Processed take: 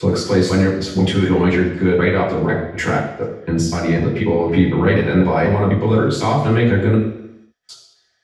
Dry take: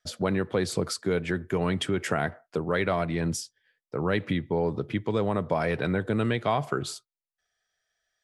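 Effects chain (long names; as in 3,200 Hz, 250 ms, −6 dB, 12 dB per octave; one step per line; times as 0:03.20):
slices reordered back to front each 248 ms, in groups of 4
in parallel at +1 dB: brickwall limiter −23.5 dBFS, peak gain reduction 11.5 dB
on the sum: convolution reverb RT60 0.85 s, pre-delay 3 ms, DRR −8 dB
level −12 dB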